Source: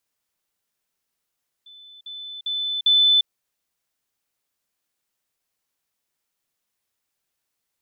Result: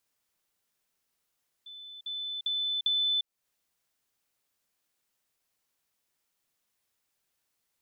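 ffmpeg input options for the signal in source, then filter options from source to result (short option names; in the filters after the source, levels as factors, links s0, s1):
-f lavfi -i "aevalsrc='pow(10,(-43+10*floor(t/0.4))/20)*sin(2*PI*3510*t)*clip(min(mod(t,0.4),0.35-mod(t,0.4))/0.005,0,1)':d=1.6:s=44100"
-af "acompressor=threshold=0.0282:ratio=3"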